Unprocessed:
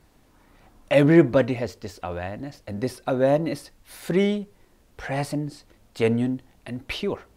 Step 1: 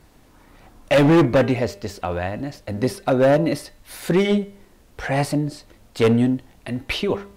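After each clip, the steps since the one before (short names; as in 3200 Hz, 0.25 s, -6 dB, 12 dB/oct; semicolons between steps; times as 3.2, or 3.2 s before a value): de-hum 200 Hz, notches 21; overloaded stage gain 17 dB; gain +6 dB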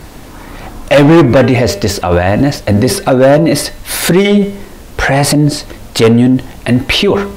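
maximiser +22 dB; gain -1 dB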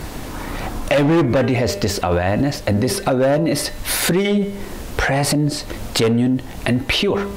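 compressor 2.5:1, threshold -22 dBFS, peak gain reduction 12 dB; gain +2 dB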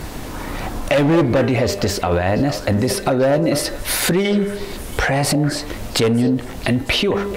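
delay with a stepping band-pass 0.226 s, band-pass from 520 Hz, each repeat 1.4 oct, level -8 dB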